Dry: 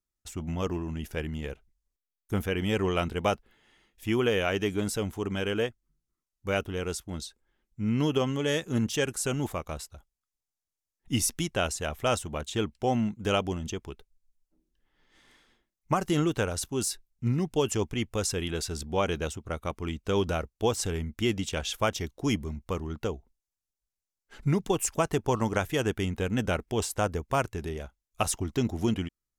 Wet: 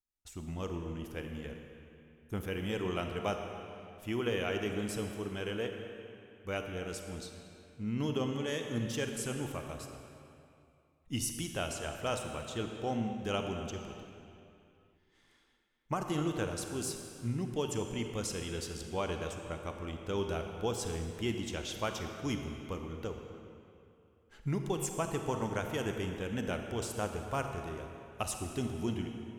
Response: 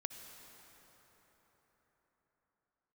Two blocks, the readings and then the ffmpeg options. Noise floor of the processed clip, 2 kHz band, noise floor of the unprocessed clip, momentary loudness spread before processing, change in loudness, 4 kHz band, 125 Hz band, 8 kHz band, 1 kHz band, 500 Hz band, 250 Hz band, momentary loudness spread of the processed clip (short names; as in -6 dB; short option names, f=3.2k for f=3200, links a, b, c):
-68 dBFS, -7.0 dB, under -85 dBFS, 9 LU, -7.0 dB, -7.0 dB, -7.0 dB, -7.5 dB, -7.0 dB, -7.0 dB, -7.0 dB, 12 LU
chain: -filter_complex "[1:a]atrim=start_sample=2205,asetrate=79380,aresample=44100[a];[0:a][a]afir=irnorm=-1:irlink=0"